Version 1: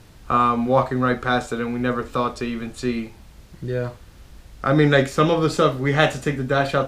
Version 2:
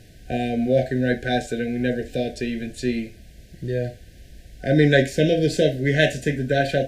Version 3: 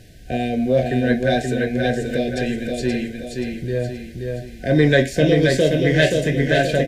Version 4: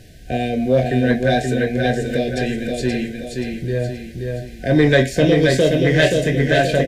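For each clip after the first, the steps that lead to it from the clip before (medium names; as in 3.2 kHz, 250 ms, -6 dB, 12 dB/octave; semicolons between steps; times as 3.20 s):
FFT band-reject 750–1500 Hz
in parallel at -11 dB: saturation -15.5 dBFS, distortion -12 dB; on the sum: feedback delay 527 ms, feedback 44%, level -4 dB
in parallel at -9 dB: hard clipper -11 dBFS, distortion -17 dB; on the sum: doubling 23 ms -12 dB; trim -1 dB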